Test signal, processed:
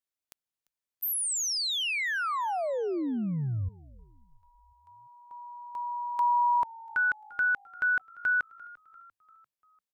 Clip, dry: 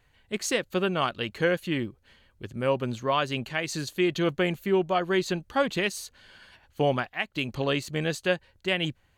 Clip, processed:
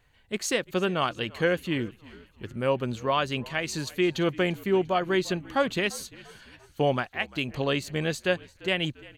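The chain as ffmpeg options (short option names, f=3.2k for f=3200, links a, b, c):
-filter_complex "[0:a]asplit=5[a][b][c][d][e];[b]adelay=345,afreqshift=-54,volume=-21.5dB[f];[c]adelay=690,afreqshift=-108,volume=-27.5dB[g];[d]adelay=1035,afreqshift=-162,volume=-33.5dB[h];[e]adelay=1380,afreqshift=-216,volume=-39.6dB[i];[a][f][g][h][i]amix=inputs=5:normalize=0"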